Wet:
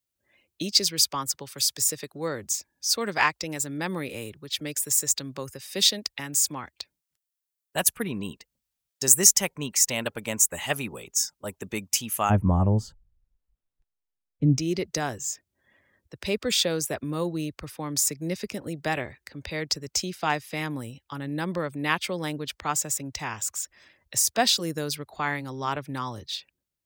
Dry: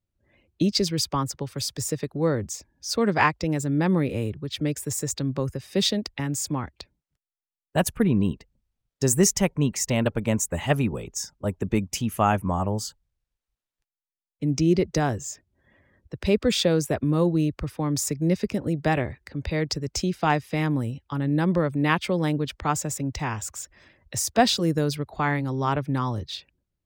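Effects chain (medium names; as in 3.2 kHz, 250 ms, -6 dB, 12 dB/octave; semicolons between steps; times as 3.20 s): tilt EQ +3.5 dB/octave, from 12.29 s -3 dB/octave, from 14.57 s +2.5 dB/octave; trim -3 dB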